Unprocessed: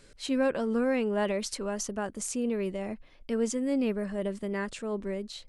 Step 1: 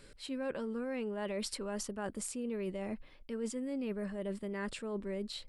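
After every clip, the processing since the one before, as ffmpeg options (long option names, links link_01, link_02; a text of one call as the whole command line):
ffmpeg -i in.wav -af "equalizer=frequency=6300:width_type=o:width=0.23:gain=-10.5,bandreject=frequency=690:width=12,areverse,acompressor=threshold=-35dB:ratio=6,areverse" out.wav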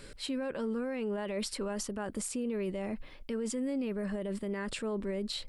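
ffmpeg -i in.wav -af "alimiter=level_in=10.5dB:limit=-24dB:level=0:latency=1:release=72,volume=-10.5dB,volume=7.5dB" out.wav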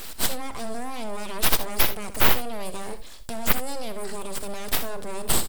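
ffmpeg -i in.wav -af "aexciter=amount=5:drive=8.2:freq=3500,aeval=exprs='abs(val(0))':channel_layout=same,aecho=1:1:63|78:0.211|0.168,volume=4.5dB" out.wav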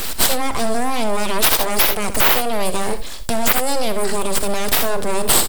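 ffmpeg -i in.wav -filter_complex "[0:a]acrossover=split=330[link_01][link_02];[link_01]acompressor=threshold=-27dB:ratio=6[link_03];[link_03][link_02]amix=inputs=2:normalize=0,alimiter=level_in=14dB:limit=-1dB:release=50:level=0:latency=1,volume=-1dB" out.wav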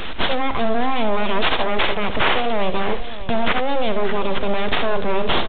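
ffmpeg -i in.wav -af "aresample=8000,acrusher=bits=5:mix=0:aa=0.5,aresample=44100,aecho=1:1:597:0.2" out.wav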